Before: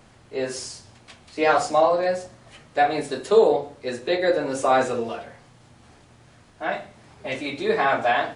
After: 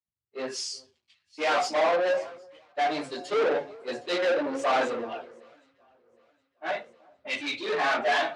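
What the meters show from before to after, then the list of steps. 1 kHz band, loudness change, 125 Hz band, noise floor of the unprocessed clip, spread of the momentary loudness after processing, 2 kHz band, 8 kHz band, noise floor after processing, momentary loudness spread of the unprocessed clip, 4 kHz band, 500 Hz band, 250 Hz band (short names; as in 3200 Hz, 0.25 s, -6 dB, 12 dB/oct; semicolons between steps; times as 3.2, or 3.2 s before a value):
-5.5 dB, -5.0 dB, -14.5 dB, -53 dBFS, 14 LU, -2.0 dB, -3.5 dB, -79 dBFS, 14 LU, +0.5 dB, -6.0 dB, -6.0 dB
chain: per-bin expansion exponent 1.5; in parallel at +1 dB: limiter -15 dBFS, peak gain reduction 8.5 dB; on the sum: chorus voices 4, 1.1 Hz, delay 15 ms, depth 3.8 ms; soft clip -21.5 dBFS, distortion -7 dB; sample leveller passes 2; BPF 320–4400 Hz; echo with dull and thin repeats by turns 0.382 s, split 1200 Hz, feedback 75%, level -13.5 dB; three-band expander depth 100%; gain -1 dB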